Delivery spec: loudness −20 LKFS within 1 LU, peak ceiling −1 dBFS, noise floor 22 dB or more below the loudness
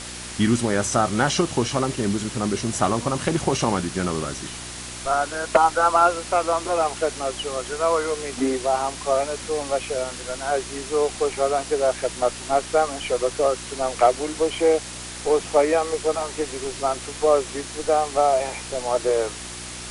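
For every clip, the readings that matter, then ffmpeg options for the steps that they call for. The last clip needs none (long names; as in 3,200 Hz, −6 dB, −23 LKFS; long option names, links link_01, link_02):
mains hum 60 Hz; hum harmonics up to 360 Hz; level of the hum −39 dBFS; background noise floor −35 dBFS; target noise floor −45 dBFS; integrated loudness −23.0 LKFS; sample peak −5.5 dBFS; target loudness −20.0 LKFS
→ -af "bandreject=frequency=60:width_type=h:width=4,bandreject=frequency=120:width_type=h:width=4,bandreject=frequency=180:width_type=h:width=4,bandreject=frequency=240:width_type=h:width=4,bandreject=frequency=300:width_type=h:width=4,bandreject=frequency=360:width_type=h:width=4"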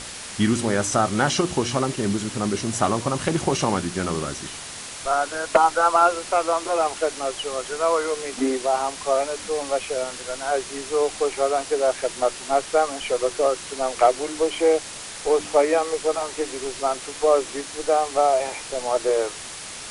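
mains hum none found; background noise floor −36 dBFS; target noise floor −45 dBFS
→ -af "afftdn=noise_reduction=9:noise_floor=-36"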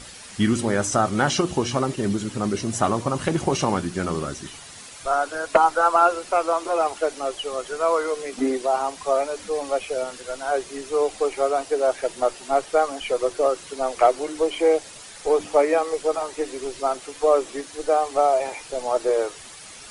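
background noise floor −42 dBFS; target noise floor −45 dBFS
→ -af "afftdn=noise_reduction=6:noise_floor=-42"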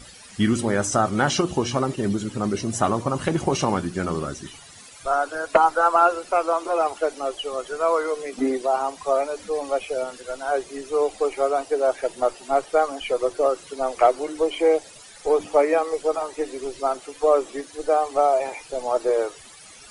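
background noise floor −46 dBFS; integrated loudness −23.5 LKFS; sample peak −5.5 dBFS; target loudness −20.0 LKFS
→ -af "volume=3.5dB"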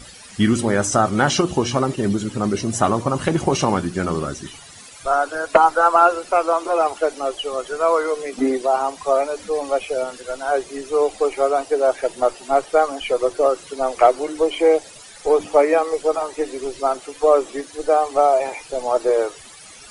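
integrated loudness −20.0 LKFS; sample peak −2.0 dBFS; background noise floor −42 dBFS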